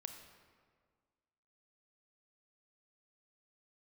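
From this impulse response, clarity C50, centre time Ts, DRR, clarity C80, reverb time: 7.0 dB, 30 ms, 6.0 dB, 8.0 dB, 1.8 s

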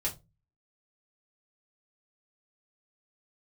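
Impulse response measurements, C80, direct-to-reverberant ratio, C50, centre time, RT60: 23.0 dB, −4.0 dB, 15.5 dB, 14 ms, 0.25 s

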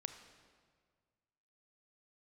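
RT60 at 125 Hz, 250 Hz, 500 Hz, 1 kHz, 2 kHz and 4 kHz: 2.2, 1.9, 1.8, 1.7, 1.5, 1.3 seconds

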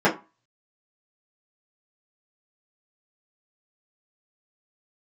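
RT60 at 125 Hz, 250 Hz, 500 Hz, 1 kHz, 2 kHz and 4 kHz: 0.30, 0.30, 0.25, 0.35, 0.25, 0.20 seconds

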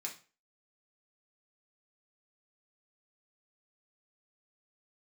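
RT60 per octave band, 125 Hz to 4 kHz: 0.35, 0.35, 0.35, 0.35, 0.35, 0.30 seconds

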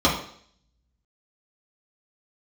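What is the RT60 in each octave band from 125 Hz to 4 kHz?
0.65, 0.60, 0.60, 0.60, 0.60, 0.65 seconds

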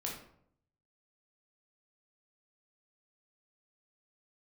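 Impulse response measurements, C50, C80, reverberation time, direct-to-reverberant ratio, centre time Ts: 4.0 dB, 8.5 dB, 0.65 s, −2.5 dB, 36 ms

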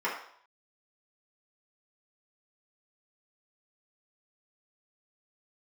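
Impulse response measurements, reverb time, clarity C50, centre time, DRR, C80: 0.60 s, 5.0 dB, 35 ms, −7.5 dB, 8.5 dB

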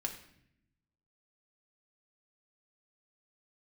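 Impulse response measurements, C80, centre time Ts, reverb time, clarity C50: 11.5 dB, 16 ms, 0.70 s, 9.0 dB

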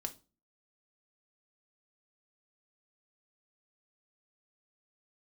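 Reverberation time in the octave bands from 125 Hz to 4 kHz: 0.45, 0.45, 0.35, 0.30, 0.25, 0.25 seconds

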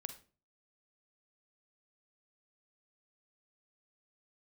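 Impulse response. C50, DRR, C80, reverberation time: 10.5 dB, 8.5 dB, 16.5 dB, 0.40 s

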